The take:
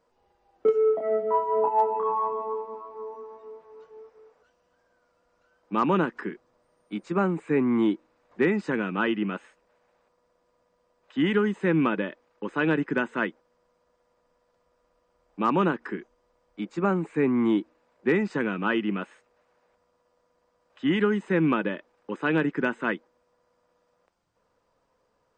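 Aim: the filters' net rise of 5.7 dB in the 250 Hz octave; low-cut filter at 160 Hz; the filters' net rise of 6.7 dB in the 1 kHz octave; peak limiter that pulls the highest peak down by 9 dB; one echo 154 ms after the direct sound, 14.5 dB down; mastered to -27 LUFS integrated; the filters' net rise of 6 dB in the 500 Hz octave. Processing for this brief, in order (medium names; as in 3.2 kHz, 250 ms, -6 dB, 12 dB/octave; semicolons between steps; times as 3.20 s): high-pass 160 Hz; peaking EQ 250 Hz +6.5 dB; peaking EQ 500 Hz +4 dB; peaking EQ 1 kHz +6.5 dB; peak limiter -14.5 dBFS; delay 154 ms -14.5 dB; trim -2.5 dB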